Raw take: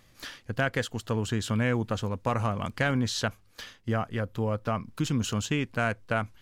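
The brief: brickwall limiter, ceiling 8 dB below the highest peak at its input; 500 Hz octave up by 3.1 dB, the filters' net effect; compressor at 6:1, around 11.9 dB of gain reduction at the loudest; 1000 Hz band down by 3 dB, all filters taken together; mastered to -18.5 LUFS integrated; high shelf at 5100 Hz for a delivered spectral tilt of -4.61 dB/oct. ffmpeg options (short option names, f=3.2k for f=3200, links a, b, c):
-af "equalizer=f=500:t=o:g=5.5,equalizer=f=1k:t=o:g=-7,highshelf=f=5.1k:g=6.5,acompressor=threshold=-35dB:ratio=6,volume=22.5dB,alimiter=limit=-7.5dB:level=0:latency=1"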